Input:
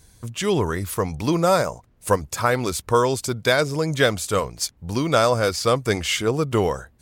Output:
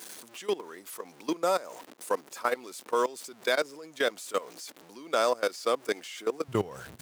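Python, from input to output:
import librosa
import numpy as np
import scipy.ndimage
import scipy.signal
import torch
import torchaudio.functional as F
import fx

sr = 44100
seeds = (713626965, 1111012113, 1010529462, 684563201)

y = x + 0.5 * 10.0 ** (-30.5 / 20.0) * np.sign(x)
y = fx.level_steps(y, sr, step_db=18)
y = fx.highpass(y, sr, hz=fx.steps((0.0, 270.0), (6.48, 100.0)), slope=24)
y = F.gain(torch.from_numpy(y), -6.0).numpy()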